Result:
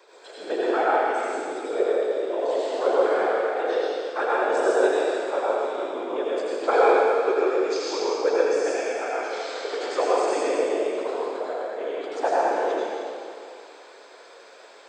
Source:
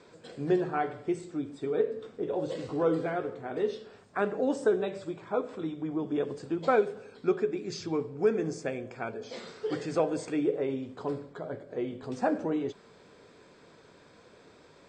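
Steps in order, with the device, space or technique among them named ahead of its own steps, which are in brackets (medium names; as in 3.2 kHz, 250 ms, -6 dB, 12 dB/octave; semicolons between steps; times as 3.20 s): whispering ghost (whisper effect; high-pass 440 Hz 24 dB/octave; reverberation RT60 2.5 s, pre-delay 79 ms, DRR -7 dB); trim +3 dB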